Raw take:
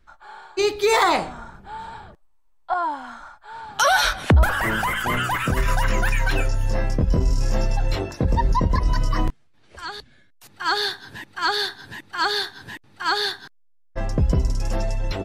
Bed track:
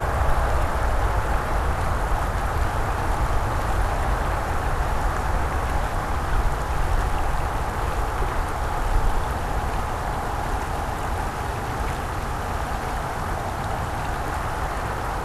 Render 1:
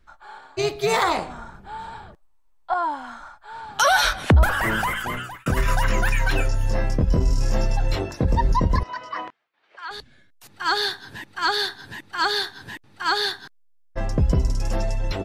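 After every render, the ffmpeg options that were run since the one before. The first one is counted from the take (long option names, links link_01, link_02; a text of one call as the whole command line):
ffmpeg -i in.wav -filter_complex "[0:a]asettb=1/sr,asplit=3[link_01][link_02][link_03];[link_01]atrim=end=0.384[link_04];[link_02]atrim=start=0.38:end=1.3,asetpts=PTS-STARTPTS,afade=type=in:duration=0.004:curve=qsin,afade=type=out:start_time=0.916:duration=0.004:curve=qsin,tremolo=f=270:d=0.667[link_05];[link_03]atrim=start=1.296[link_06];[link_04][link_05]acrossfade=duration=0.004:curve1=hsin:curve2=qsin[link_07];[link_07][link_06]acrossfade=duration=0.004:curve1=qsin:curve2=hsin,asettb=1/sr,asplit=3[link_08][link_09][link_10];[link_08]atrim=end=8.834[link_11];[link_09]atrim=start=8.83:end=9.91,asetpts=PTS-STARTPTS,afade=type=in:duration=0.004:curve=qsin,afade=type=out:start_time=1.076:duration=0.004:curve=qsin,highpass=700,lowpass=2800[link_12];[link_10]atrim=start=9.906[link_13];[link_11][link_12]acrossfade=duration=0.004:curve1=hsin:curve2=qsin[link_14];[link_14][link_13]acrossfade=duration=0.004:curve1=qsin:curve2=hsin,asplit=2[link_15][link_16];[link_15]atrim=end=5.46,asetpts=PTS-STARTPTS,afade=type=out:start_time=4.81:duration=0.65[link_17];[link_16]atrim=start=5.46,asetpts=PTS-STARTPTS,afade=type=in:duration=0.004:curve=hsin[link_18];[link_17][link_18]concat=n=2:v=0:a=1" out.wav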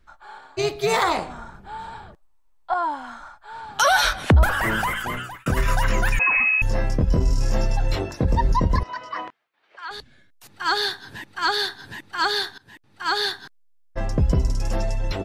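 ffmpeg -i in.wav -filter_complex "[0:a]asettb=1/sr,asplit=3[link_01][link_02][link_03];[link_01]atrim=end=6.194[link_04];[link_02]atrim=start=6.19:end=6.62,asetpts=PTS-STARTPTS,afade=type=in:duration=0.004:curve=qsin,afade=type=out:start_time=0.426:duration=0.004:curve=qsin,lowpass=frequency=2200:width_type=q:width=0.5098,lowpass=frequency=2200:width_type=q:width=0.6013,lowpass=frequency=2200:width_type=q:width=0.9,lowpass=frequency=2200:width_type=q:width=2.563,afreqshift=-2600[link_05];[link_03]atrim=start=6.616[link_06];[link_04][link_05]acrossfade=duration=0.004:curve1=hsin:curve2=qsin[link_07];[link_07][link_06]acrossfade=duration=0.004:curve1=qsin:curve2=hsin,asplit=2[link_08][link_09];[link_08]atrim=end=12.58,asetpts=PTS-STARTPTS,afade=type=out:start_time=12.576:duration=0.004:curve=hsin:silence=0.0944061[link_10];[link_09]atrim=start=12.58,asetpts=PTS-STARTPTS,afade=type=in:duration=0.62:silence=0.0944061[link_11];[link_10][link_11]concat=n=2:v=0:a=1" out.wav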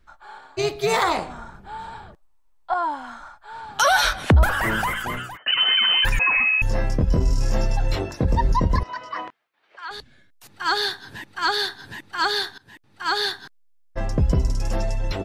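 ffmpeg -i in.wav -filter_complex "[0:a]asettb=1/sr,asplit=3[link_01][link_02][link_03];[link_01]atrim=end=5.374[link_04];[link_02]atrim=start=5.37:end=6.05,asetpts=PTS-STARTPTS,afade=type=in:duration=0.004:curve=qsin,afade=type=out:start_time=0.676:duration=0.004:curve=qsin,lowpass=frequency=2600:width_type=q:width=0.5098,lowpass=frequency=2600:width_type=q:width=0.6013,lowpass=frequency=2600:width_type=q:width=0.9,lowpass=frequency=2600:width_type=q:width=2.563,afreqshift=-3100[link_05];[link_03]atrim=start=6.046[link_06];[link_04][link_05]acrossfade=duration=0.004:curve1=hsin:curve2=qsin[link_07];[link_07][link_06]acrossfade=duration=0.004:curve1=qsin:curve2=hsin" out.wav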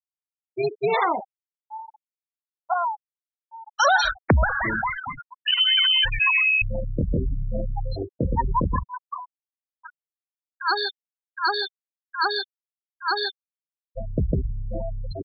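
ffmpeg -i in.wav -af "afftfilt=real='re*gte(hypot(re,im),0.178)':imag='im*gte(hypot(re,im),0.178)':win_size=1024:overlap=0.75,lowshelf=frequency=94:gain=-8" out.wav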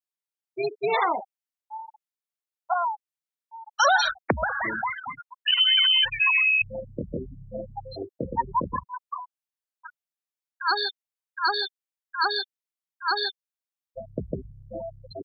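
ffmpeg -i in.wav -af "adynamicequalizer=threshold=0.0126:dfrequency=1500:dqfactor=1.8:tfrequency=1500:tqfactor=1.8:attack=5:release=100:ratio=0.375:range=2.5:mode=cutabove:tftype=bell,highpass=frequency=430:poles=1" out.wav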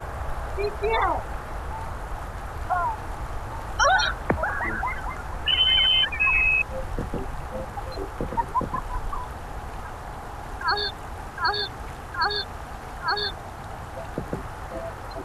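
ffmpeg -i in.wav -i bed.wav -filter_complex "[1:a]volume=-10dB[link_01];[0:a][link_01]amix=inputs=2:normalize=0" out.wav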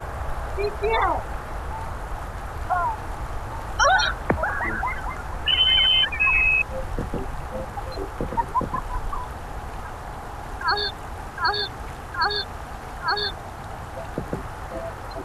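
ffmpeg -i in.wav -af "volume=1.5dB" out.wav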